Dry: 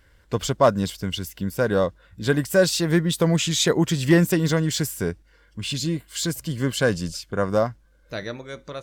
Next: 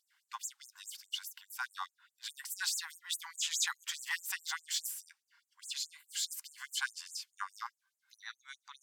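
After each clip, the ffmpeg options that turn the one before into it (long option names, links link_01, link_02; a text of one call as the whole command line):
ffmpeg -i in.wav -af "afftfilt=real='re*gte(b*sr/1024,740*pow(6700/740,0.5+0.5*sin(2*PI*4.8*pts/sr)))':imag='im*gte(b*sr/1024,740*pow(6700/740,0.5+0.5*sin(2*PI*4.8*pts/sr)))':win_size=1024:overlap=0.75,volume=-7.5dB" out.wav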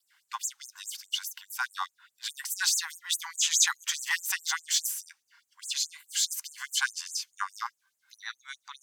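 ffmpeg -i in.wav -af "adynamicequalizer=threshold=0.00141:dfrequency=6200:dqfactor=6.8:tfrequency=6200:tqfactor=6.8:attack=5:release=100:ratio=0.375:range=3.5:mode=boostabove:tftype=bell,volume=7.5dB" out.wav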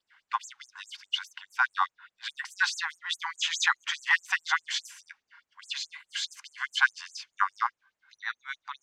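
ffmpeg -i in.wav -af "lowpass=2300,volume=7.5dB" out.wav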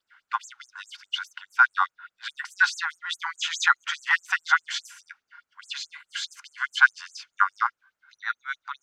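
ffmpeg -i in.wav -af "equalizer=frequency=1400:width_type=o:width=0.3:gain=10.5" out.wav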